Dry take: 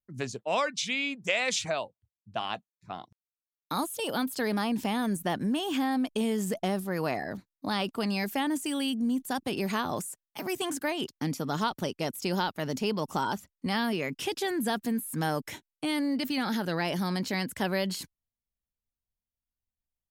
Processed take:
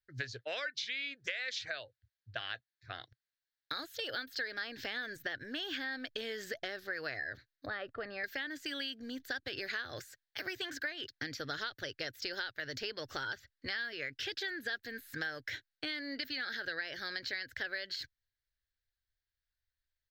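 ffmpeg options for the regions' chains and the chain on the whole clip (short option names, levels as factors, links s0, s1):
-filter_complex "[0:a]asettb=1/sr,asplit=3[s0][s1][s2];[s0]atrim=end=7.664[s3];[s1]atrim=start=7.66:end=8.24,asetpts=PTS-STARTPTS,afade=t=in:d=0.004:c=qsin,afade=t=out:st=0.576:d=0.004:c=qsin,lowpass=1300,aecho=1:1:1.6:0.3,atrim=end_sample=25578[s4];[s2]atrim=start=8.236[s5];[s3][s4]acrossfade=d=0.004:c1=hsin:c2=qsin[s6];[s6][s5]acrossfade=d=0.004:c1=qsin:c2=hsin,firequalizer=gain_entry='entry(120,0);entry(180,-27);entry(280,-11);entry(520,-4);entry(960,-18);entry(1600,12);entry(2500,-1);entry(4200,7);entry(9700,-27);entry(15000,-5)':delay=0.05:min_phase=1,acompressor=threshold=0.0141:ratio=6,volume=1.12"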